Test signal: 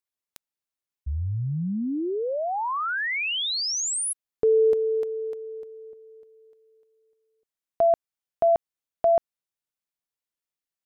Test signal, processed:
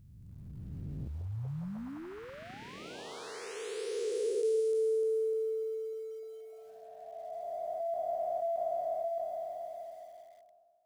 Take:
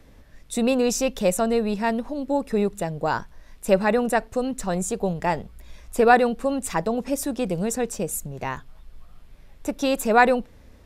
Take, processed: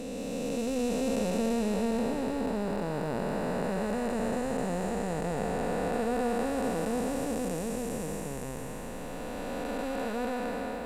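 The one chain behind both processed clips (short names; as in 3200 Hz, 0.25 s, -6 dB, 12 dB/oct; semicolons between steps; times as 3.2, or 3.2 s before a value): time blur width 1.47 s; lo-fi delay 0.173 s, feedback 35%, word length 9-bit, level -13.5 dB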